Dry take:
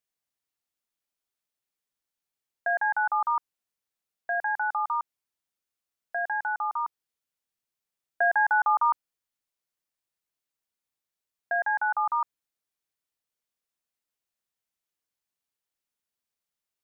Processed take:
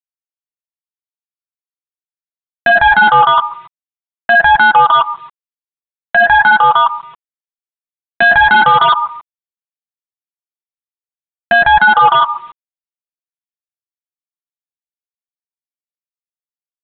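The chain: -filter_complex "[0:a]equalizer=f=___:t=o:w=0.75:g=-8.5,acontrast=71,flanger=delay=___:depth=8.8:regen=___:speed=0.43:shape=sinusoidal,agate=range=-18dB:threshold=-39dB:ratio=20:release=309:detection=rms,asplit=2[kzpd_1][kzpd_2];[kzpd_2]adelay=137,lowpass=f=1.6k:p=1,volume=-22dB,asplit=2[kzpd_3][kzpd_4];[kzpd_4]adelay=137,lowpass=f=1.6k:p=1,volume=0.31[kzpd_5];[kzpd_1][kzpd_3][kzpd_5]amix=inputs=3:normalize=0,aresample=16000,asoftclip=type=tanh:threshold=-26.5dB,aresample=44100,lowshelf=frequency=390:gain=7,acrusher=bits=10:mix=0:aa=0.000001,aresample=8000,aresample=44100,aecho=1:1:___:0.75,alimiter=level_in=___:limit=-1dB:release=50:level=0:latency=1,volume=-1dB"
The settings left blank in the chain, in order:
520, 6.8, -18, 6, 26.5dB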